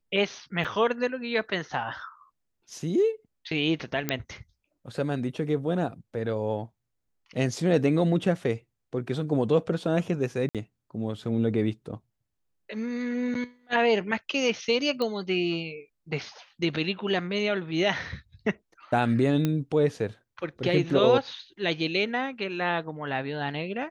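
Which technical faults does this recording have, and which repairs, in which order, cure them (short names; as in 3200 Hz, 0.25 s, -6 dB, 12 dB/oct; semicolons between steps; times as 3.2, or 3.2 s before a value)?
0.64–0.65 gap 6.4 ms
4.09 pop -10 dBFS
10.49–10.55 gap 57 ms
15.02 pop -17 dBFS
19.45 pop -13 dBFS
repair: de-click; interpolate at 0.64, 6.4 ms; interpolate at 10.49, 57 ms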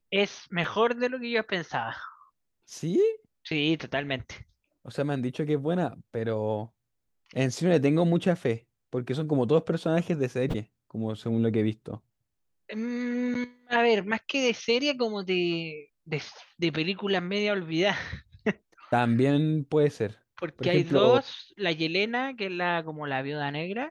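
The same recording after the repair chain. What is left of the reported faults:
19.45 pop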